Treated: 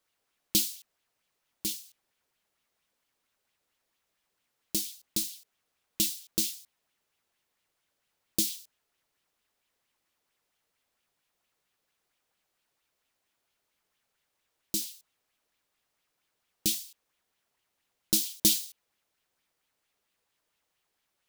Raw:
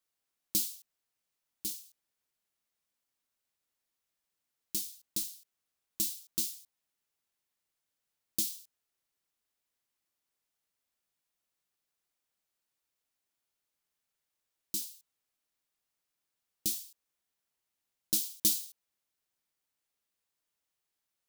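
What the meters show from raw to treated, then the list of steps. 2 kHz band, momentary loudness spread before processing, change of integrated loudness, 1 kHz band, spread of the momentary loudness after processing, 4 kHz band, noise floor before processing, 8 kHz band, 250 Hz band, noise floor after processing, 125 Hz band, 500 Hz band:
+10.0 dB, 19 LU, +4.0 dB, can't be measured, 19 LU, +7.0 dB, below −85 dBFS, +4.5 dB, +9.0 dB, −81 dBFS, +8.5 dB, +9.5 dB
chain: high-shelf EQ 5,200 Hz −6 dB
auto-filter bell 4.4 Hz 430–3,300 Hz +7 dB
level +8.5 dB

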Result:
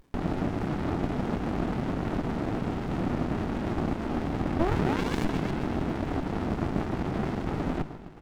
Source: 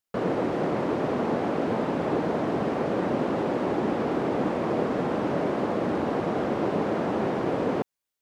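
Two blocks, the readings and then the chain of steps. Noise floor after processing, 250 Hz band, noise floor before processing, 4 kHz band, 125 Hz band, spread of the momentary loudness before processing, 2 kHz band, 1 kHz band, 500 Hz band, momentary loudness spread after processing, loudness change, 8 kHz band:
−41 dBFS, −2.0 dB, below −85 dBFS, −0.5 dB, +3.5 dB, 1 LU, −2.5 dB, −5.0 dB, −8.0 dB, 4 LU, −3.0 dB, can't be measured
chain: sound drawn into the spectrogram rise, 0:04.59–0:05.25, 300–2,500 Hz −19 dBFS
echo with shifted repeats 132 ms, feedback 63%, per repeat +34 Hz, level −13 dB
upward compression, threshold −35 dBFS
mains-hum notches 50/100/150/200 Hz
windowed peak hold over 65 samples

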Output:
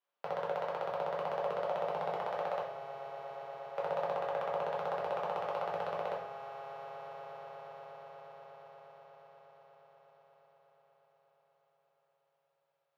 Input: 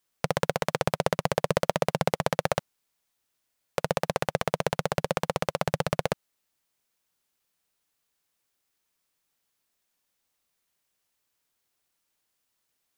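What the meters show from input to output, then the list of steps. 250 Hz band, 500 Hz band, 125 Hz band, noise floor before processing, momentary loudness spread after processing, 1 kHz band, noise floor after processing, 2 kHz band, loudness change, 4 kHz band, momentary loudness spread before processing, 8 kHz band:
−19.0 dB, −6.5 dB, −21.0 dB, −79 dBFS, 16 LU, −5.0 dB, −80 dBFS, −12.0 dB, −9.0 dB, −16.5 dB, 4 LU, below −25 dB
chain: octave-band graphic EQ 250/2,000/4,000/8,000 Hz −8/−7/−4/−10 dB
brickwall limiter −18.5 dBFS, peak gain reduction 9.5 dB
high-pass filter 110 Hz
three-way crossover with the lows and the highs turned down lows −18 dB, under 360 Hz, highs −20 dB, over 3,700 Hz
echo that builds up and dies away 119 ms, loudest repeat 8, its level −17.5 dB
rectangular room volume 110 cubic metres, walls mixed, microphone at 1.2 metres
level −3 dB

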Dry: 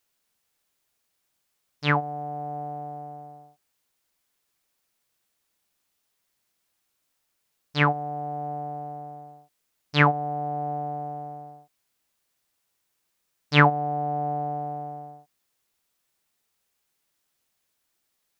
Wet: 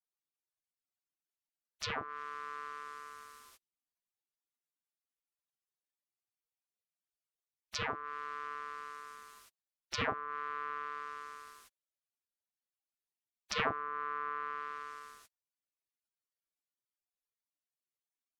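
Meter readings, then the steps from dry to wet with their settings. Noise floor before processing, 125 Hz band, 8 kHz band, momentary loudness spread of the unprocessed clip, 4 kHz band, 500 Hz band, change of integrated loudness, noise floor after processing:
−76 dBFS, −25.5 dB, can't be measured, 19 LU, −9.5 dB, −14.0 dB, −13.5 dB, below −85 dBFS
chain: gate on every frequency bin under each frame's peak −25 dB weak
treble cut that deepens with the level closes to 1,400 Hz, closed at −48.5 dBFS
level +17 dB

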